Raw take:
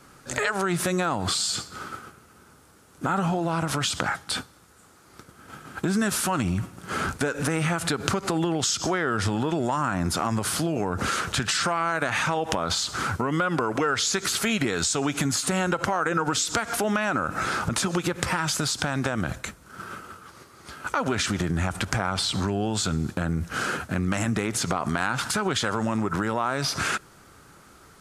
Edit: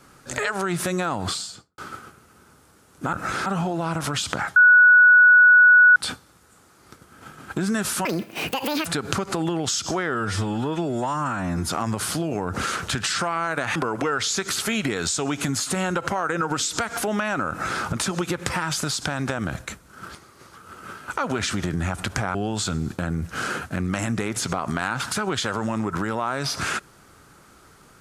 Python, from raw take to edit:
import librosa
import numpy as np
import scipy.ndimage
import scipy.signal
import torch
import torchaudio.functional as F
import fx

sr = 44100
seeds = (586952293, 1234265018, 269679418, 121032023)

y = fx.studio_fade_out(x, sr, start_s=1.24, length_s=0.54)
y = fx.edit(y, sr, fx.insert_tone(at_s=4.23, length_s=1.4, hz=1470.0, db=-9.0),
    fx.speed_span(start_s=6.32, length_s=1.49, speed=1.85),
    fx.stretch_span(start_s=9.1, length_s=1.02, factor=1.5),
    fx.cut(start_s=12.2, length_s=1.32),
    fx.duplicate(start_s=17.26, length_s=0.33, to_s=3.13),
    fx.reverse_span(start_s=19.86, length_s=0.88),
    fx.cut(start_s=22.11, length_s=0.42), tone=tone)